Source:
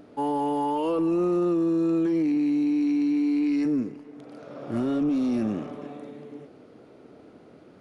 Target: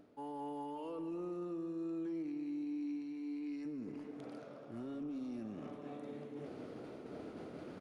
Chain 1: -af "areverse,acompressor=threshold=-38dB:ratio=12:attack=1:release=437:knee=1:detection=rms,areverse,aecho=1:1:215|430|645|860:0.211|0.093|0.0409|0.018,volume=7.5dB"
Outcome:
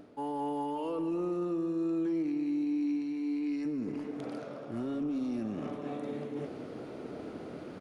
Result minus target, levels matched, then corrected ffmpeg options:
downward compressor: peak gain reduction −9 dB
-af "areverse,acompressor=threshold=-48dB:ratio=12:attack=1:release=437:knee=1:detection=rms,areverse,aecho=1:1:215|430|645|860:0.211|0.093|0.0409|0.018,volume=7.5dB"

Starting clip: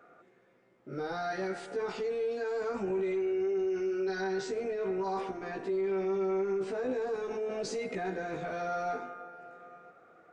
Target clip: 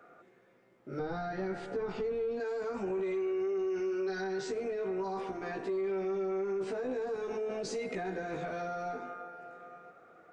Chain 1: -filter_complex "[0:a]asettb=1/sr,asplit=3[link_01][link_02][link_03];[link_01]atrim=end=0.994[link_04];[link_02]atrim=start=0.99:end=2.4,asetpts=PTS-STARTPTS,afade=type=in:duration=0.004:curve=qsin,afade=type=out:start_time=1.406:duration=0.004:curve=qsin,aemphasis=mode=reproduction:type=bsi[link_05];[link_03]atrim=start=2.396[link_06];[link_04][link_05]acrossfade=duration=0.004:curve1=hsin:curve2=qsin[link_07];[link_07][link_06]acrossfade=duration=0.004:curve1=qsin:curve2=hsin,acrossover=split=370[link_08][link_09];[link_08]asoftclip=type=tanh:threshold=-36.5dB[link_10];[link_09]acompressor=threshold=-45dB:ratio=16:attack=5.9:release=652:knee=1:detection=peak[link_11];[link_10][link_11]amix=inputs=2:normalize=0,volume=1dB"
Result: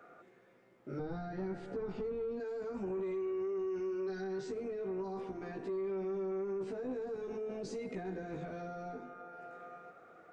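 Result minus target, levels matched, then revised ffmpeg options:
downward compressor: peak gain reduction +9.5 dB
-filter_complex "[0:a]asettb=1/sr,asplit=3[link_01][link_02][link_03];[link_01]atrim=end=0.994[link_04];[link_02]atrim=start=0.99:end=2.4,asetpts=PTS-STARTPTS,afade=type=in:duration=0.004:curve=qsin,afade=type=out:start_time=1.406:duration=0.004:curve=qsin,aemphasis=mode=reproduction:type=bsi[link_05];[link_03]atrim=start=2.396[link_06];[link_04][link_05]acrossfade=duration=0.004:curve1=hsin:curve2=qsin[link_07];[link_07][link_06]acrossfade=duration=0.004:curve1=qsin:curve2=hsin,acrossover=split=370[link_08][link_09];[link_08]asoftclip=type=tanh:threshold=-36.5dB[link_10];[link_09]acompressor=threshold=-35dB:ratio=16:attack=5.9:release=652:knee=1:detection=peak[link_11];[link_10][link_11]amix=inputs=2:normalize=0,volume=1dB"

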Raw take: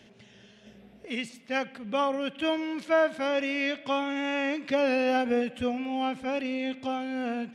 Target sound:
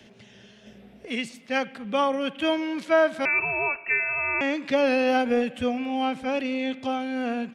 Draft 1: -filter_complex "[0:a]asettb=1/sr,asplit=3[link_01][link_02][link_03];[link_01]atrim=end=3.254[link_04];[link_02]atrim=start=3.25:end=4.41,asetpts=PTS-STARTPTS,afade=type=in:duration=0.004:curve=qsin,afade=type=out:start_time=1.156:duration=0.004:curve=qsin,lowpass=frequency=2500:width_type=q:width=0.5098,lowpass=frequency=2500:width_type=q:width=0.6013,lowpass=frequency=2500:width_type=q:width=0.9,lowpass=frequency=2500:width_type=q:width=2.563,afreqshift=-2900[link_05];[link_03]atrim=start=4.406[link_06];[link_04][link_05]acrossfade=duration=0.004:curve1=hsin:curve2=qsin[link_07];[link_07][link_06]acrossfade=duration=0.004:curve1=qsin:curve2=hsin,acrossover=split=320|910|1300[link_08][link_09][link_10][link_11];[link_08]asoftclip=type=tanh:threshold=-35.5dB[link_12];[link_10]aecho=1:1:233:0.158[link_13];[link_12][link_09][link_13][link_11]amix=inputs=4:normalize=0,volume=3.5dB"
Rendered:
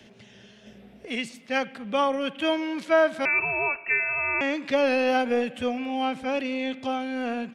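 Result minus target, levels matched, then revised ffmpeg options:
soft clipping: distortion +14 dB
-filter_complex "[0:a]asettb=1/sr,asplit=3[link_01][link_02][link_03];[link_01]atrim=end=3.254[link_04];[link_02]atrim=start=3.25:end=4.41,asetpts=PTS-STARTPTS,afade=type=in:duration=0.004:curve=qsin,afade=type=out:start_time=1.156:duration=0.004:curve=qsin,lowpass=frequency=2500:width_type=q:width=0.5098,lowpass=frequency=2500:width_type=q:width=0.6013,lowpass=frequency=2500:width_type=q:width=0.9,lowpass=frequency=2500:width_type=q:width=2.563,afreqshift=-2900[link_05];[link_03]atrim=start=4.406[link_06];[link_04][link_05]acrossfade=duration=0.004:curve1=hsin:curve2=qsin[link_07];[link_07][link_06]acrossfade=duration=0.004:curve1=qsin:curve2=hsin,acrossover=split=320|910|1300[link_08][link_09][link_10][link_11];[link_08]asoftclip=type=tanh:threshold=-25dB[link_12];[link_10]aecho=1:1:233:0.158[link_13];[link_12][link_09][link_13][link_11]amix=inputs=4:normalize=0,volume=3.5dB"

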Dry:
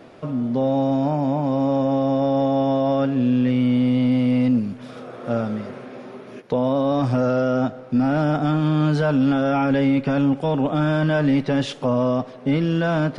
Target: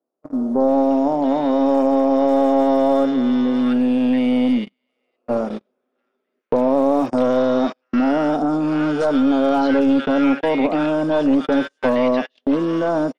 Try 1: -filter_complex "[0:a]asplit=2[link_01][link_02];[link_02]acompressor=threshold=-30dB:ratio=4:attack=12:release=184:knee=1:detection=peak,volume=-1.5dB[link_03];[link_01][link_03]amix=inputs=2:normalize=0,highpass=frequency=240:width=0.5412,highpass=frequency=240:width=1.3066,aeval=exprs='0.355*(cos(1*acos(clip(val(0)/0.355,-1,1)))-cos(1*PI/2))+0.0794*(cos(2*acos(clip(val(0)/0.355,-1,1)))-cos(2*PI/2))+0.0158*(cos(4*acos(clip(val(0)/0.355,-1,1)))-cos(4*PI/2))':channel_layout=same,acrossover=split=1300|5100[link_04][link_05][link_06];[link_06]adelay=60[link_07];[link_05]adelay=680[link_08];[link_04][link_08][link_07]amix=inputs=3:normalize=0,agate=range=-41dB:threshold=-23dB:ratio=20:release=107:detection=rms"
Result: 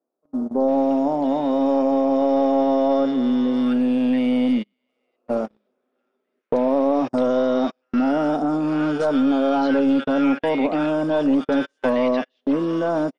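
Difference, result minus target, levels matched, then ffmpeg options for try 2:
downward compressor: peak gain reduction +8 dB
-filter_complex "[0:a]asplit=2[link_01][link_02];[link_02]acompressor=threshold=-19.5dB:ratio=4:attack=12:release=184:knee=1:detection=peak,volume=-1.5dB[link_03];[link_01][link_03]amix=inputs=2:normalize=0,highpass=frequency=240:width=0.5412,highpass=frequency=240:width=1.3066,aeval=exprs='0.355*(cos(1*acos(clip(val(0)/0.355,-1,1)))-cos(1*PI/2))+0.0794*(cos(2*acos(clip(val(0)/0.355,-1,1)))-cos(2*PI/2))+0.0158*(cos(4*acos(clip(val(0)/0.355,-1,1)))-cos(4*PI/2))':channel_layout=same,acrossover=split=1300|5100[link_04][link_05][link_06];[link_06]adelay=60[link_07];[link_05]adelay=680[link_08];[link_04][link_08][link_07]amix=inputs=3:normalize=0,agate=range=-41dB:threshold=-23dB:ratio=20:release=107:detection=rms"

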